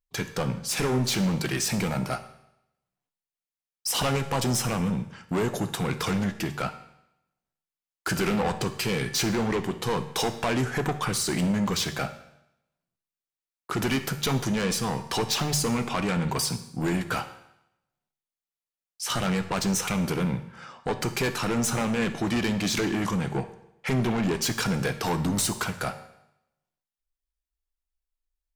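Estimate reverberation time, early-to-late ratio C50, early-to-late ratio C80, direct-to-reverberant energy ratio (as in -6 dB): 0.80 s, 12.0 dB, 14.5 dB, 9.0 dB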